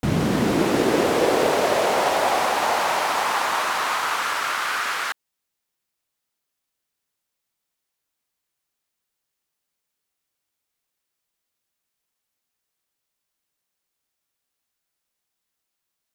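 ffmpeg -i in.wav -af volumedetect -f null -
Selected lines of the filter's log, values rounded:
mean_volume: -26.4 dB
max_volume: -7.1 dB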